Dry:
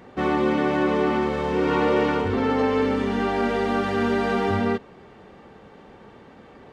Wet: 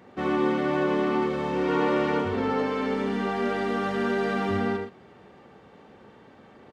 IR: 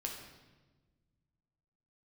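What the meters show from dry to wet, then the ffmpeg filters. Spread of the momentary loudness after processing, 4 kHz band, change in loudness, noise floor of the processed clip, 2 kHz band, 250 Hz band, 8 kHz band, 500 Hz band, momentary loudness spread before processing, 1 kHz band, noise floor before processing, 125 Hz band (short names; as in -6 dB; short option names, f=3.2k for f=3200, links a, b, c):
3 LU, -3.5 dB, -3.5 dB, -52 dBFS, -3.0 dB, -3.5 dB, n/a, -3.5 dB, 3 LU, -3.5 dB, -48 dBFS, -4.0 dB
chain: -af "highpass=77,aecho=1:1:75.8|116.6:0.447|0.316,volume=-5dB"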